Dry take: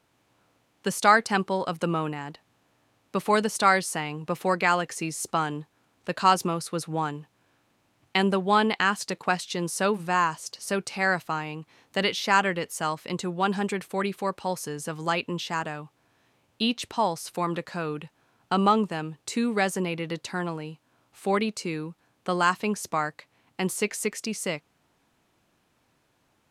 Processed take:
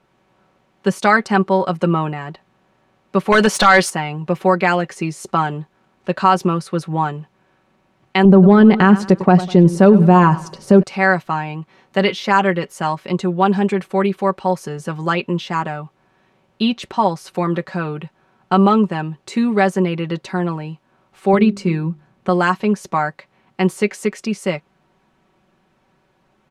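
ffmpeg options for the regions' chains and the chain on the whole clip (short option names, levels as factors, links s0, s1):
-filter_complex "[0:a]asettb=1/sr,asplit=3[s0][s1][s2];[s0]atrim=end=3.324[s3];[s1]atrim=start=3.32:end=3.9,asetpts=PTS-STARTPTS,afade=t=in:d=0.004:c=qsin,afade=t=out:st=0.576:d=0.004:c=qsin,equalizer=f=110:w=0.31:g=-11.5,acompressor=threshold=0.0708:ratio=8:attack=3.2:release=140:knee=1:detection=peak,aeval=exprs='0.224*sin(PI/2*2.82*val(0)/0.224)':c=same[s4];[s2]atrim=start=3.896[s5];[s3][s4]acrossfade=d=0.004:c1=hsin:c2=qsin[s6];[s6][s5]acrossfade=d=0.004:c1=qsin:c2=hsin,asettb=1/sr,asplit=3[s7][s8][s9];[s7]atrim=end=8.254[s10];[s8]atrim=start=8.25:end=10.83,asetpts=PTS-STARTPTS,afade=t=in:d=0.004:c=qsin,afade=t=out:st=2.576:d=0.004:c=qsin,tiltshelf=f=720:g=8.5,acontrast=72,aecho=1:1:99|198|297:0.119|0.0428|0.0154,atrim=end_sample=113778[s11];[s9]atrim=start=10.826[s12];[s10][s11]acrossfade=d=0.004:c1=hsin:c2=qsin[s13];[s13][s12]acrossfade=d=0.004:c1=qsin:c2=hsin,asettb=1/sr,asplit=3[s14][s15][s16];[s14]atrim=end=21.334[s17];[s15]atrim=start=21.33:end=22.29,asetpts=PTS-STARTPTS,afade=t=in:d=0.004:c=qsin,afade=t=out:st=0.956:d=0.004:c=qsin,bass=f=250:g=8,treble=f=4000:g=-1,bandreject=f=50:t=h:w=6,bandreject=f=100:t=h:w=6,bandreject=f=150:t=h:w=6,bandreject=f=200:t=h:w=6,bandreject=f=250:t=h:w=6,bandreject=f=300:t=h:w=6,bandreject=f=350:t=h:w=6,bandreject=f=400:t=h:w=6[s18];[s16]atrim=start=22.286[s19];[s17][s18]acrossfade=d=0.004:c1=hsin:c2=qsin[s20];[s20][s19]acrossfade=d=0.004:c1=qsin:c2=hsin,lowpass=f=1800:p=1,aecho=1:1:5.3:0.61,alimiter=level_in=2.82:limit=0.891:release=50:level=0:latency=1,volume=0.891"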